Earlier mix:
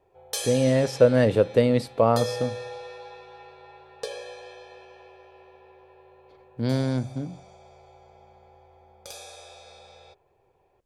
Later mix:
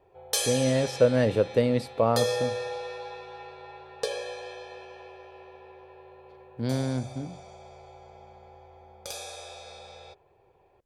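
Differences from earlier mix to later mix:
speech −3.5 dB
background +3.5 dB

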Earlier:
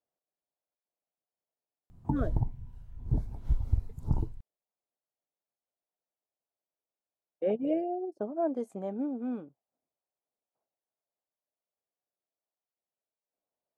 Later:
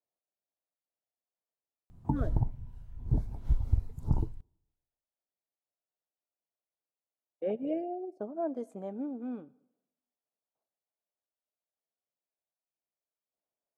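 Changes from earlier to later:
speech −5.0 dB
reverb: on, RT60 0.85 s

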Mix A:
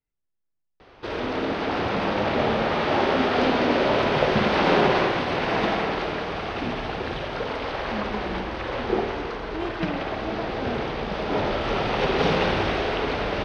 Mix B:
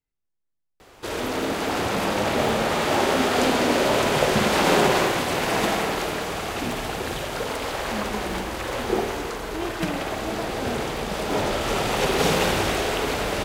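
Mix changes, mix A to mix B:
background: remove Savitzky-Golay smoothing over 15 samples
master: remove high-frequency loss of the air 110 metres

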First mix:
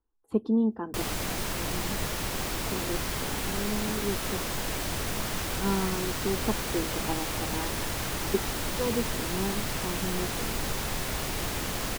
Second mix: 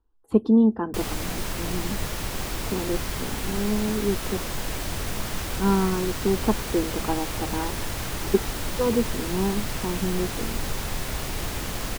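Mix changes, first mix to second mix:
speech +6.5 dB
master: add low-shelf EQ 89 Hz +6 dB

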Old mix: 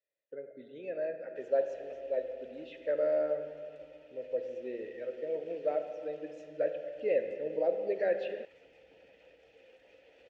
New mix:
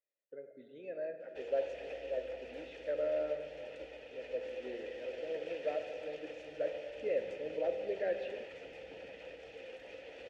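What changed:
speech −5.0 dB
background +10.5 dB

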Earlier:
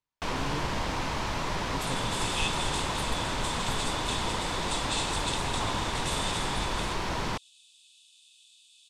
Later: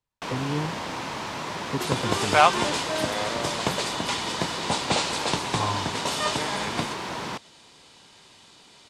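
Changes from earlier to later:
speech +9.5 dB
first sound: add high-pass filter 150 Hz 12 dB per octave
second sound: remove Chebyshev high-pass with heavy ripple 2,500 Hz, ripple 9 dB

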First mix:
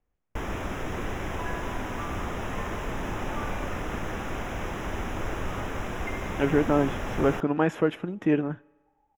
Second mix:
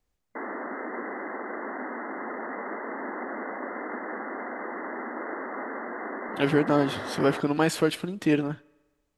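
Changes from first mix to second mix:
first sound: add linear-phase brick-wall band-pass 210–2,100 Hz
second sound: muted
master: remove moving average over 10 samples

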